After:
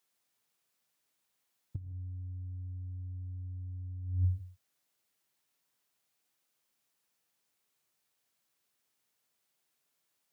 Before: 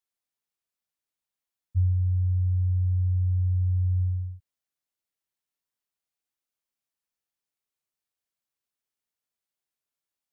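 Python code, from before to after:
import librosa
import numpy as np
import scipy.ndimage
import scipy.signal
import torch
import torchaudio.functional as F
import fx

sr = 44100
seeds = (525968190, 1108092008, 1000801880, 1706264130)

y = scipy.signal.sosfilt(scipy.signal.butter(4, 91.0, 'highpass', fs=sr, output='sos'), x)
y = fx.over_compress(y, sr, threshold_db=-34.0, ratio=-0.5)
y = fx.rev_gated(y, sr, seeds[0], gate_ms=180, shape='rising', drr_db=12.0)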